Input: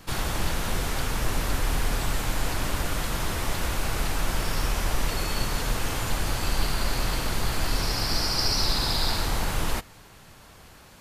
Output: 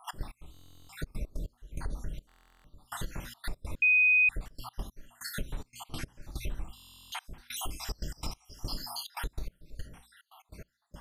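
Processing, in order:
time-frequency cells dropped at random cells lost 74%
low-shelf EQ 470 Hz +11 dB
mains-hum notches 60/120/180/240 Hz
0:07.54–0:09.03: high-shelf EQ 5,300 Hz +10 dB
reverb whose tail is shaped and stops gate 90 ms flat, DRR 6 dB
gate pattern "x.x...xxxx." 144 BPM −24 dB
downward compressor 5 to 1, threshold −34 dBFS, peak gain reduction 22.5 dB
0:03.82–0:04.29: beep over 2,500 Hz −19.5 dBFS
buffer that repeats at 0:00.52/0:02.27/0:06.75, samples 1,024, times 15

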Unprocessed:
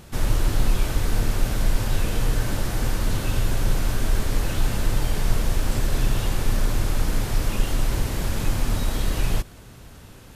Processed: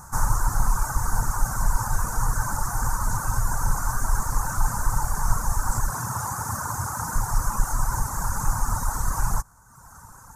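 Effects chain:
0:05.90–0:07.16: high-pass filter 79 Hz 24 dB per octave
reverb reduction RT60 1.1 s
drawn EQ curve 150 Hz 0 dB, 360 Hz −12 dB, 640 Hz −4 dB, 910 Hz +14 dB, 1,500 Hz +8 dB, 2,100 Hz −13 dB, 3,100 Hz −29 dB, 6,400 Hz +10 dB, 14,000 Hz +5 dB

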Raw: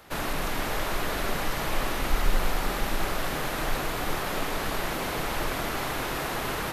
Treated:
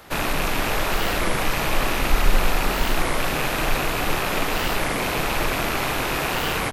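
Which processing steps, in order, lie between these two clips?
loose part that buzzes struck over −39 dBFS, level −23 dBFS
wow of a warped record 33 1/3 rpm, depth 250 cents
level +6 dB

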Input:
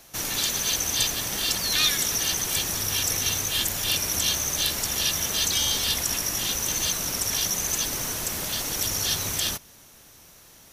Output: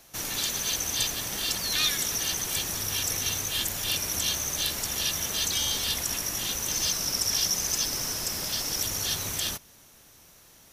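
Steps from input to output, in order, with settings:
0:06.71–0:08.82: parametric band 5,200 Hz +12 dB 0.2 octaves
level −3.5 dB

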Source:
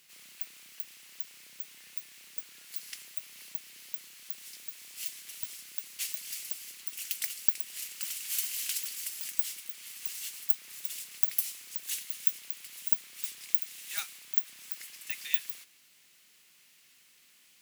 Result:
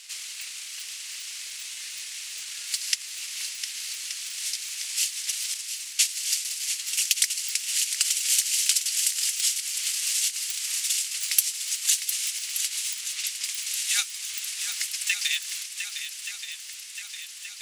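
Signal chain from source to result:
meter weighting curve ITU-R 468
downward compressor 2 to 1, threshold −33 dBFS, peak gain reduction 7.5 dB
transient designer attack +5 dB, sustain −11 dB
0:05.54–0:06.60: downward expander −34 dBFS
0:12.94–0:13.44: high-frequency loss of the air 74 metres
feedback echo with a long and a short gap by turns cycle 1,176 ms, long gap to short 1.5 to 1, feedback 57%, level −9 dB
level +7 dB

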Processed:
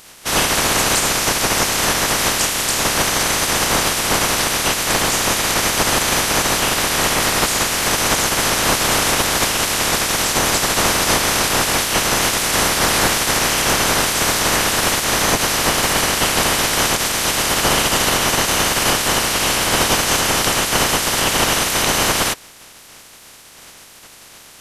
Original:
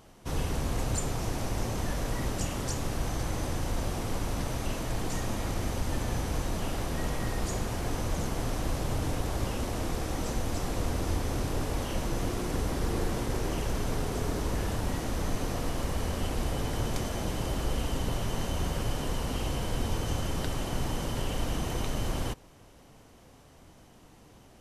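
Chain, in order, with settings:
ceiling on every frequency bin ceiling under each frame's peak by 29 dB
boost into a limiter +15 dB
level −2.5 dB

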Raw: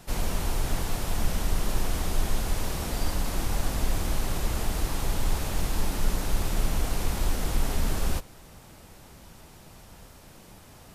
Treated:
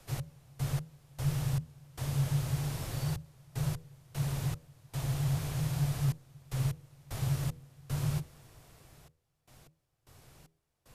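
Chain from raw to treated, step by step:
gate pattern "x..x..xx..xxxxx" 76 BPM −24 dB
hum removal 80.64 Hz, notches 9
frequency shifter −160 Hz
level −7.5 dB

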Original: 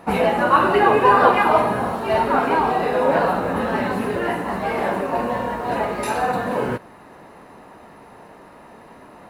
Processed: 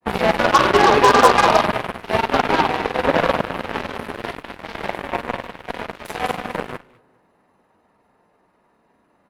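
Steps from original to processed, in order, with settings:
granular cloud 100 ms, grains 20 per second, spray 25 ms, pitch spread up and down by 0 semitones
repeating echo 206 ms, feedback 23%, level −7 dB
harmonic generator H 7 −16 dB, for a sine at −5.5 dBFS
level +2.5 dB

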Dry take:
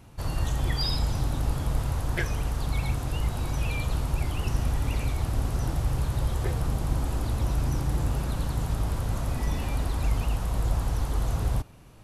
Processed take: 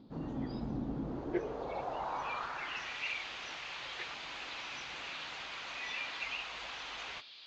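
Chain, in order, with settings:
elliptic low-pass filter 6,700 Hz, stop band 50 dB
parametric band 87 Hz −14 dB 1.8 octaves
noise in a band 3,200–4,900 Hz −55 dBFS
band-pass filter sweep 240 Hz → 2,500 Hz, 0:01.63–0:04.79
time stretch by phase vocoder 0.62×
level +11.5 dB

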